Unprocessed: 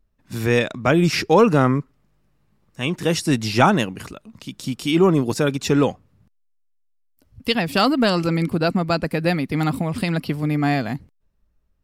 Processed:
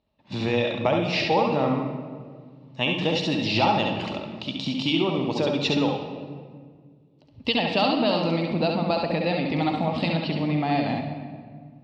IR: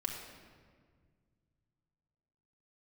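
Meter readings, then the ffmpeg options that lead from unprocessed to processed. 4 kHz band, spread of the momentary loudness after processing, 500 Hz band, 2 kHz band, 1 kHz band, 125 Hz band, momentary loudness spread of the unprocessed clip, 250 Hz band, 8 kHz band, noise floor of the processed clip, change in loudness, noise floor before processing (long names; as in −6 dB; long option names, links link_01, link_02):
+0.5 dB, 14 LU, −4.0 dB, −4.0 dB, −2.5 dB, −6.5 dB, 13 LU, −5.0 dB, −14.0 dB, −56 dBFS, −4.5 dB, −65 dBFS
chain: -filter_complex "[0:a]acompressor=threshold=-24dB:ratio=6,highpass=110,equalizer=frequency=610:width_type=q:width=4:gain=7,equalizer=frequency=870:width_type=q:width=4:gain=9,equalizer=frequency=1500:width_type=q:width=4:gain=-9,equalizer=frequency=2800:width_type=q:width=4:gain=7,equalizer=frequency=3900:width_type=q:width=4:gain=8,lowpass=frequency=4800:width=0.5412,lowpass=frequency=4800:width=1.3066,asplit=2[link_01][link_02];[1:a]atrim=start_sample=2205,adelay=67[link_03];[link_02][link_03]afir=irnorm=-1:irlink=0,volume=-3dB[link_04];[link_01][link_04]amix=inputs=2:normalize=0"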